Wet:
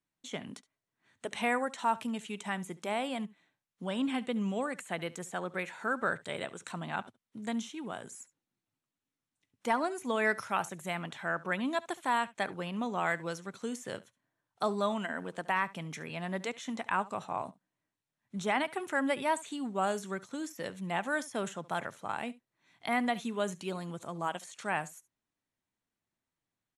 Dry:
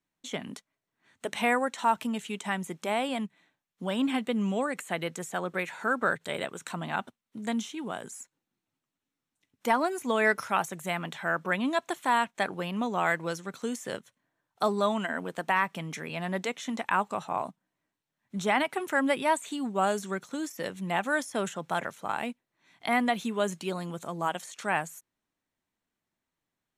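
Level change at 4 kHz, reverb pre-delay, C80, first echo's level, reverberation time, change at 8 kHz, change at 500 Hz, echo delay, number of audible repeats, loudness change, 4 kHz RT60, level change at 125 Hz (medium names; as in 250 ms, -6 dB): -4.5 dB, no reverb, no reverb, -20.0 dB, no reverb, -4.5 dB, -4.5 dB, 70 ms, 1, -4.5 dB, no reverb, -3.5 dB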